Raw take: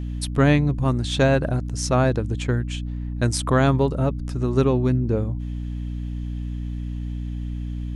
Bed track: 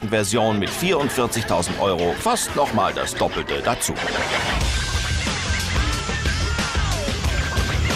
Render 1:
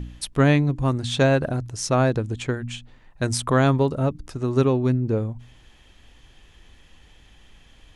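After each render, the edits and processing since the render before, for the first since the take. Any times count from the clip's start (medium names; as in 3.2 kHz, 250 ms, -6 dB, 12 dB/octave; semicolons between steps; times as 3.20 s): de-hum 60 Hz, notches 5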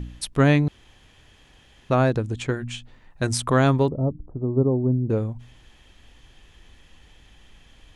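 0.68–1.90 s: room tone; 2.48–3.27 s: doubling 14 ms -11 dB; 3.88–5.10 s: Bessel low-pass 560 Hz, order 8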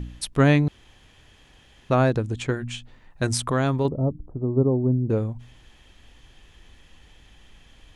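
3.45–3.85 s: compression 1.5:1, threshold -25 dBFS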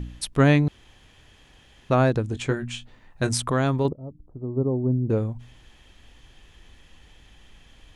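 2.27–3.33 s: doubling 22 ms -10 dB; 3.93–5.10 s: fade in, from -20.5 dB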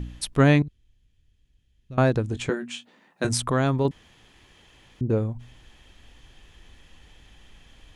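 0.62–1.98 s: amplifier tone stack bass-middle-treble 10-0-1; 2.49–3.25 s: elliptic high-pass 170 Hz, stop band 50 dB; 3.91–5.01 s: room tone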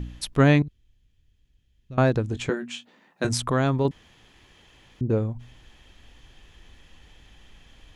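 peaking EQ 9.1 kHz -6 dB 0.29 oct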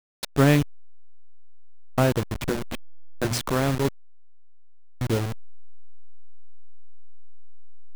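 send-on-delta sampling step -23 dBFS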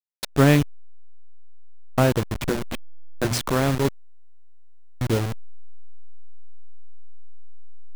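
trim +2 dB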